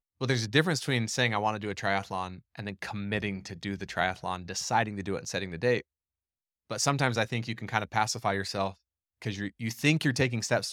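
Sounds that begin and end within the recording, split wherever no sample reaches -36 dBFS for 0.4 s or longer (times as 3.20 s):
6.71–8.71 s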